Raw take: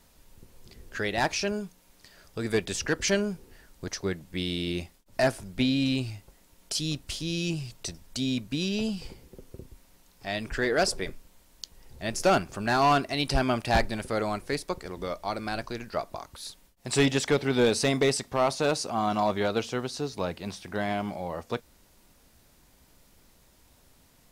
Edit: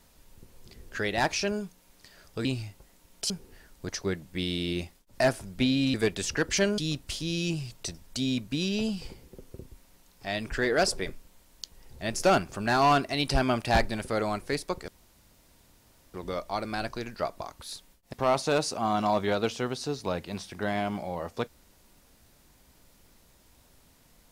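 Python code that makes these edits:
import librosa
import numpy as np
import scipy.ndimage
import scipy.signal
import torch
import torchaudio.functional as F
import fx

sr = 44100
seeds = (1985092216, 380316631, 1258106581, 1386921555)

y = fx.edit(x, sr, fx.swap(start_s=2.45, length_s=0.84, other_s=5.93, other_length_s=0.85),
    fx.insert_room_tone(at_s=14.88, length_s=1.26),
    fx.cut(start_s=16.87, length_s=1.39), tone=tone)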